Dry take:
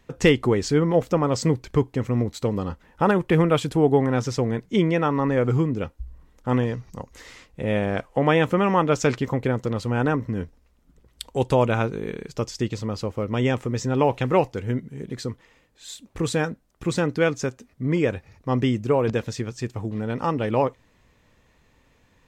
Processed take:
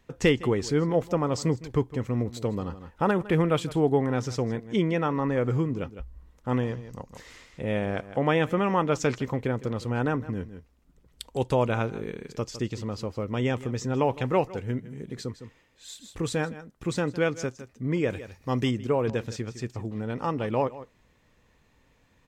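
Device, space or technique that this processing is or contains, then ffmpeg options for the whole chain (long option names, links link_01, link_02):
ducked delay: -filter_complex "[0:a]asplit=3[link_01][link_02][link_03];[link_02]adelay=158,volume=-6dB[link_04];[link_03]apad=whole_len=989478[link_05];[link_04][link_05]sidechaincompress=threshold=-40dB:ratio=3:attack=32:release=211[link_06];[link_01][link_06]amix=inputs=2:normalize=0,asettb=1/sr,asplit=3[link_07][link_08][link_09];[link_07]atrim=end=18.104[link_10];[link_08]atrim=start=18.1:end=18.71,asetpts=PTS-STARTPTS,afade=type=in:duration=0.004:curve=qsin,afade=type=out:start_time=0.606:duration=0.004:curve=qsin,highshelf=frequency=3700:gain=11[link_11];[link_09]atrim=start=18.706[link_12];[link_10][link_11]acrossfade=duration=0.004:curve1=hsin:curve2=qsin[link_13];[link_13][link_12]acrossfade=duration=0.004:curve1=qsin:curve2=hsin,volume=-4.5dB"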